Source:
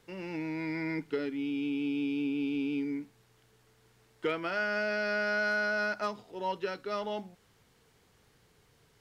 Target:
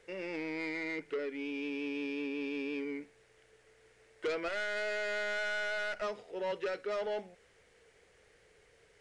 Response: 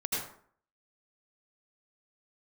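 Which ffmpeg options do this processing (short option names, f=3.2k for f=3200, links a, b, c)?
-filter_complex "[0:a]asettb=1/sr,asplit=3[a][b][c];[a]atrim=end=4.484[d];[b]atrim=start=4.48:end=6.02,asetpts=PTS-STARTPTS,afade=t=in:d=0.004:c=qsin,afade=t=out:st=1.536:d=0.004:c=qsin,aeval=exprs='if(lt(val(0),0),0.251*val(0),val(0))':c=same[e];[c]atrim=start=6.016[f];[d][e]acrossfade=d=0.004:c1=hsin:c2=qsin[g];[g][f]acrossfade=d=0.004:c1=qsin:c2=hsin,equalizer=f=125:t=o:w=1:g=-9,equalizer=f=250:t=o:w=1:g=-8,equalizer=f=500:t=o:w=1:g=10,equalizer=f=1k:t=o:w=1:g=-7,equalizer=f=2k:t=o:w=1:g=8,equalizer=f=4k:t=o:w=1:g=-4,asettb=1/sr,asplit=3[h][i][j];[h]atrim=end=0.684[k];[i]atrim=start=0.68:end=1.35,asetpts=PTS-STARTPTS,afade=t=in:d=0.004:c=qsin,afade=t=out:st=0.666:d=0.004:c=qsin,acompressor=threshold=-35dB:ratio=1.5[l];[j]atrim=start=1.346[m];[k][l]acrossfade=d=0.004:c1=hsin:c2=qsin[n];[n][m]acrossfade=d=0.004:c1=qsin:c2=hsin,asoftclip=type=tanh:threshold=-30dB,aresample=22050,aresample=44100"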